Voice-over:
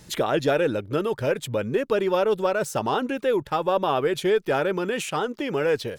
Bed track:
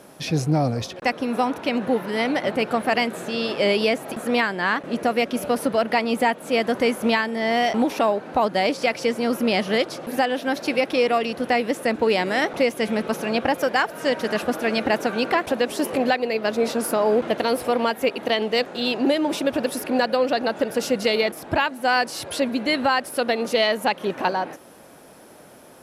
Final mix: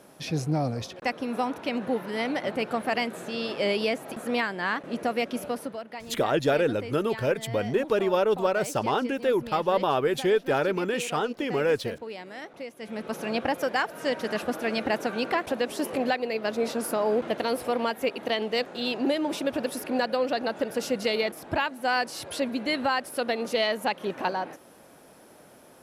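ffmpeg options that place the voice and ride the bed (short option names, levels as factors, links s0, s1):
-filter_complex "[0:a]adelay=6000,volume=0.841[s0];[1:a]volume=2.24,afade=t=out:st=5.35:d=0.48:silence=0.237137,afade=t=in:st=12.78:d=0.48:silence=0.223872[s1];[s0][s1]amix=inputs=2:normalize=0"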